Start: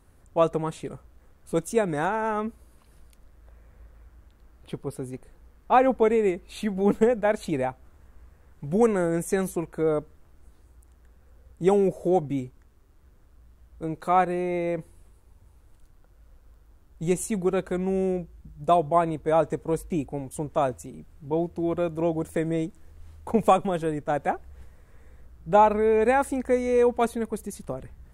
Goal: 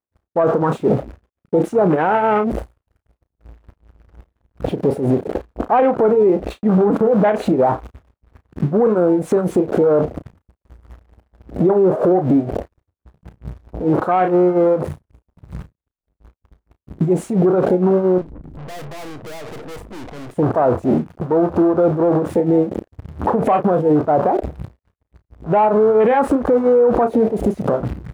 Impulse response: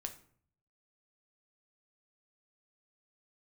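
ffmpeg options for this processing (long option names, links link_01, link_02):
-filter_complex "[0:a]aeval=exprs='val(0)+0.5*0.0531*sgn(val(0))':channel_layout=same,highpass=frequency=400:poles=1,afwtdn=0.0316,lowpass=frequency=1000:poles=1,agate=range=-58dB:threshold=-46dB:ratio=16:detection=peak,acontrast=57,tremolo=f=4.3:d=0.83,asettb=1/sr,asplit=3[link_01][link_02][link_03];[link_01]atrim=end=18.184[link_04];[link_02]atrim=start=18.18:end=20.31,asetpts=PTS-STARTPTS,afade=type=in:duration=0.004:curve=qsin,afade=type=out:start_time=2.126:duration=0.004:curve=qsin,aeval=exprs='(tanh(316*val(0)+0.5)-tanh(0.5))/316':channel_layout=same[link_05];[link_03]atrim=start=20.306[link_06];[link_04][link_05]acrossfade=duration=0.004:curve1=hsin:curve2=qsin[link_07];[link_07][link_06]acrossfade=duration=0.004:curve1=qsin:curve2=hsin,asplit=2[link_08][link_09];[link_09]adelay=33,volume=-12dB[link_10];[link_08][link_10]amix=inputs=2:normalize=0,alimiter=level_in=24dB:limit=-1dB:release=50:level=0:latency=1,volume=-6.5dB"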